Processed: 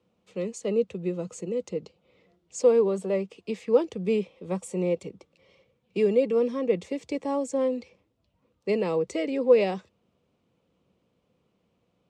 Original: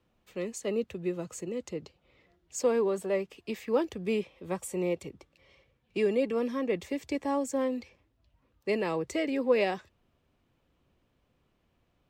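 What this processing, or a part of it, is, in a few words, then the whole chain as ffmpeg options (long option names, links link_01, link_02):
car door speaker: -af "highpass=93,equalizer=frequency=190:width_type=q:width=4:gain=8,equalizer=frequency=480:width_type=q:width=4:gain=8,equalizer=frequency=1700:width_type=q:width=4:gain=-7,lowpass=frequency=9300:width=0.5412,lowpass=frequency=9300:width=1.3066"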